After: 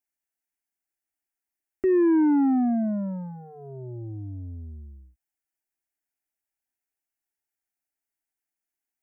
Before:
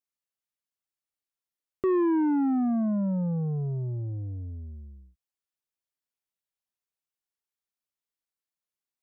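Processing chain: fixed phaser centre 750 Hz, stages 8; gain +4.5 dB

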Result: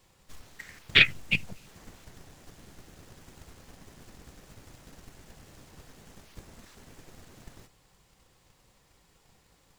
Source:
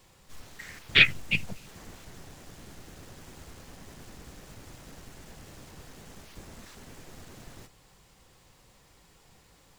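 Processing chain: transient shaper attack +7 dB, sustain +1 dB; gain -5 dB

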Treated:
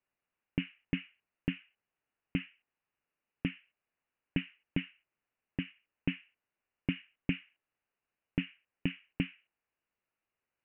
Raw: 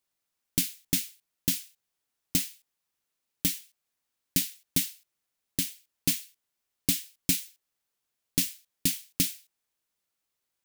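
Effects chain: Chebyshev low-pass 2900 Hz, order 8

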